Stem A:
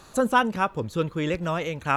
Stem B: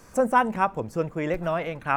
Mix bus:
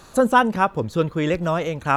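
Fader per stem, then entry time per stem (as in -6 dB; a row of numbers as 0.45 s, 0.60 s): +2.5 dB, -5.5 dB; 0.00 s, 0.00 s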